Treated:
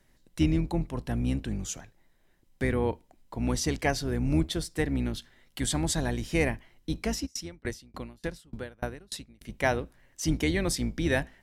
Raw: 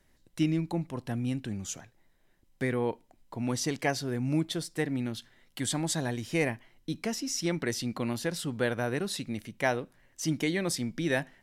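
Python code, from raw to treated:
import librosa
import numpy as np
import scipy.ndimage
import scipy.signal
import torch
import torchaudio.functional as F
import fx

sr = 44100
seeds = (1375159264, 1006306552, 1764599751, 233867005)

y = fx.octave_divider(x, sr, octaves=2, level_db=-2.0)
y = fx.tremolo_decay(y, sr, direction='decaying', hz=3.4, depth_db=34, at=(7.25, 9.47), fade=0.02)
y = y * librosa.db_to_amplitude(1.5)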